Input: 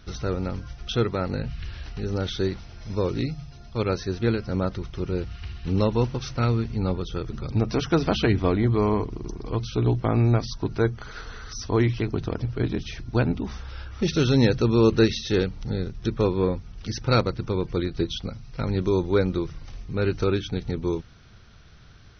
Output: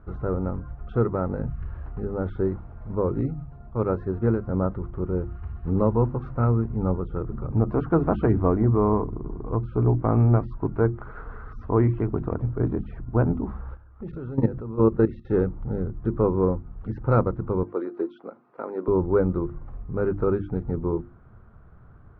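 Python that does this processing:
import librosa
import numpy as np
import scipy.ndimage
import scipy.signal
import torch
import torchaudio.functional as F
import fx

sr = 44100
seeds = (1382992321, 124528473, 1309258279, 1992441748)

y = fx.peak_eq(x, sr, hz=2300.0, db=4.5, octaves=0.78, at=(9.81, 12.5))
y = fx.level_steps(y, sr, step_db=17, at=(13.74, 15.27), fade=0.02)
y = fx.highpass(y, sr, hz=310.0, slope=24, at=(17.63, 18.88))
y = scipy.signal.sosfilt(scipy.signal.cheby1(3, 1.0, 1200.0, 'lowpass', fs=sr, output='sos'), y)
y = fx.hum_notches(y, sr, base_hz=50, count=7)
y = F.gain(torch.from_numpy(y), 2.0).numpy()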